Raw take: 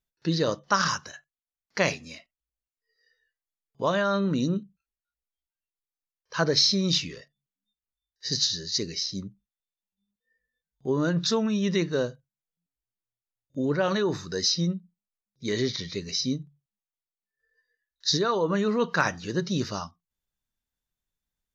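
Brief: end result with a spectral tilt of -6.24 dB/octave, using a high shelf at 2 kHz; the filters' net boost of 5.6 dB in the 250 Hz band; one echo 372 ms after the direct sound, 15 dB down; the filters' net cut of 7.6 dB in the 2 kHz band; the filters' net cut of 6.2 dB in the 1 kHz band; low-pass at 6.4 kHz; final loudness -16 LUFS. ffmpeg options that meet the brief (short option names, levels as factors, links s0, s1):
-af "lowpass=6400,equalizer=f=250:t=o:g=8,equalizer=f=1000:t=o:g=-5,highshelf=f=2000:g=-6,equalizer=f=2000:t=o:g=-5,aecho=1:1:372:0.178,volume=2.99"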